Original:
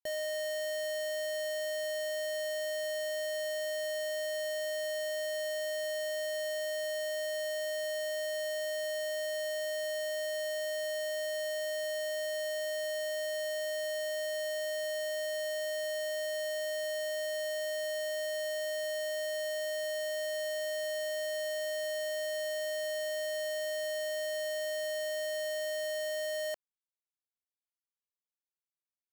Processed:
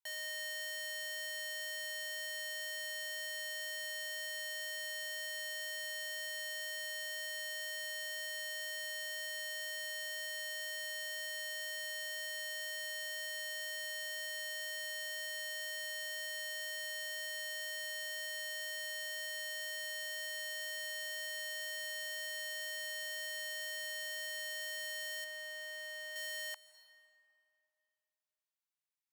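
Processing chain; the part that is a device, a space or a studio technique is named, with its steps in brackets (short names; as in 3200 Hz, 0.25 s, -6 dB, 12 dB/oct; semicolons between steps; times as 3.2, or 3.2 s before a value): saturated reverb return (on a send at -13 dB: reverb RT60 2.3 s, pre-delay 0.114 s + soft clip -37 dBFS, distortion -14 dB); on the sum: Chebyshev high-pass 880 Hz, order 4; 25.24–26.16 high shelf 3100 Hz -9 dB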